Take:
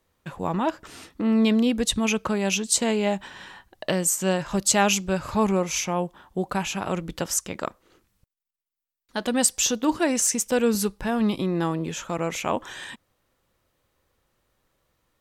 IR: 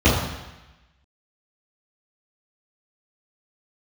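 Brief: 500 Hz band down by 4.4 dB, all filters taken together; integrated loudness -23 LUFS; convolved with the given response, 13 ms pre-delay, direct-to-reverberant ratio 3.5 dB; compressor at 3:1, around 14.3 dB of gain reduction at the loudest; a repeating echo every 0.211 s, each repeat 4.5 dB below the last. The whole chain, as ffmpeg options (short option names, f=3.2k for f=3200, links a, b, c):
-filter_complex "[0:a]equalizer=f=500:t=o:g=-5.5,acompressor=threshold=-37dB:ratio=3,aecho=1:1:211|422|633|844|1055|1266|1477|1688|1899:0.596|0.357|0.214|0.129|0.0772|0.0463|0.0278|0.0167|0.01,asplit=2[a][b];[1:a]atrim=start_sample=2205,adelay=13[c];[b][c]afir=irnorm=-1:irlink=0,volume=-25.5dB[d];[a][d]amix=inputs=2:normalize=0,volume=9dB"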